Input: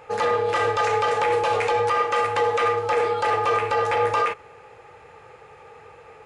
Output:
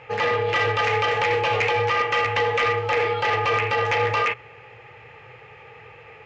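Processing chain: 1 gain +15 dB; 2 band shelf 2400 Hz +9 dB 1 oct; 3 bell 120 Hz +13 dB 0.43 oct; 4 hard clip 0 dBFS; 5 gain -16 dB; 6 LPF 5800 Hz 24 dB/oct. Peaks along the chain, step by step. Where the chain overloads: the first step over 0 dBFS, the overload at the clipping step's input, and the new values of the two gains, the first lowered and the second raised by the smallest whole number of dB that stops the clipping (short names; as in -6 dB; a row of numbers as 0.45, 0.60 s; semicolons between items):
+4.5, +8.5, +9.0, 0.0, -16.0, -14.5 dBFS; step 1, 9.0 dB; step 1 +6 dB, step 5 -7 dB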